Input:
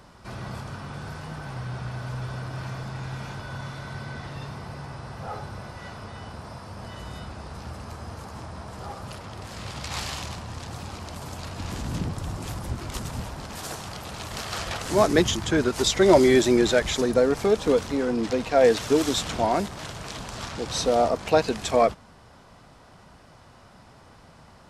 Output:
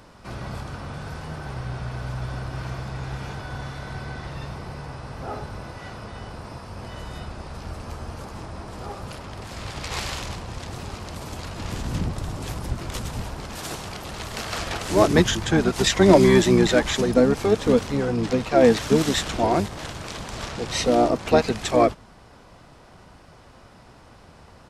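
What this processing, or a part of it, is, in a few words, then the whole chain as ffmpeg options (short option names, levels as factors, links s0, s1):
octave pedal: -filter_complex "[0:a]asettb=1/sr,asplit=3[s0][s1][s2];[s0]atrim=end=7.674[s3];[s1]atrim=start=7.67:end=8.25,asetpts=PTS-STARTPTS,afade=t=in:d=0.004:c=qsin,afade=t=out:st=0.576:d=0.004:c=qsin,asplit=2[s4][s5];[s5]adelay=13,volume=0.316[s6];[s4][s6]amix=inputs=2:normalize=0,atrim=end_sample=25578[s7];[s2]atrim=start=8.246[s8];[s3][s7]acrossfade=d=0.004:c1=hsin:c2=qsin[s9];[s9][s8]acrossfade=d=0.004:c1=qsin:c2=hsin,asplit=2[s10][s11];[s11]asetrate=22050,aresample=44100,atempo=2,volume=0.631[s12];[s10][s12]amix=inputs=2:normalize=0,volume=1.12"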